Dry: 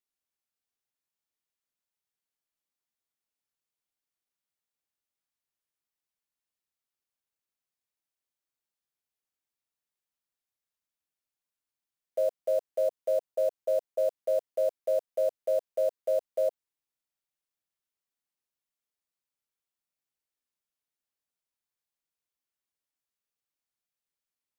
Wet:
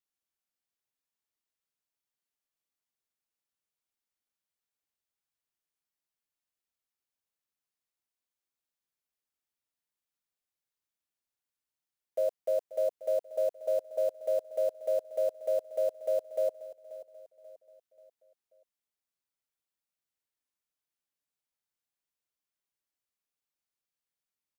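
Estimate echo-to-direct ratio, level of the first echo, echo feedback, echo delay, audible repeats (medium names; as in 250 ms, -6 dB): -15.0 dB, -16.0 dB, 44%, 535 ms, 3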